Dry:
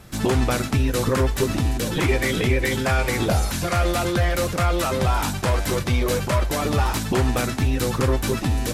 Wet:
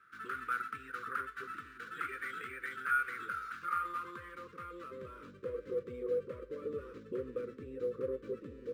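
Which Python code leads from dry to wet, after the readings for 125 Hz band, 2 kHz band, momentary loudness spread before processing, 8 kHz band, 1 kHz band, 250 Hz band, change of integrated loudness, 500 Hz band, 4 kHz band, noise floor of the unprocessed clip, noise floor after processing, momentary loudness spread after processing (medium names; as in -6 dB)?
-34.5 dB, -11.5 dB, 2 LU, -34.0 dB, -13.0 dB, -24.5 dB, -17.5 dB, -15.5 dB, -30.0 dB, -28 dBFS, -55 dBFS, 11 LU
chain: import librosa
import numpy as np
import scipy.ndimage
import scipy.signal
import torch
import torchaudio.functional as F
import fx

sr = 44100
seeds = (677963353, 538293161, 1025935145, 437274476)

y = fx.filter_sweep_bandpass(x, sr, from_hz=1400.0, to_hz=530.0, start_s=3.47, end_s=5.5, q=7.5)
y = scipy.signal.sosfilt(scipy.signal.cheby1(3, 1.0, [470.0, 1200.0], 'bandstop', fs=sr, output='sos'), y)
y = np.interp(np.arange(len(y)), np.arange(len(y))[::4], y[::4])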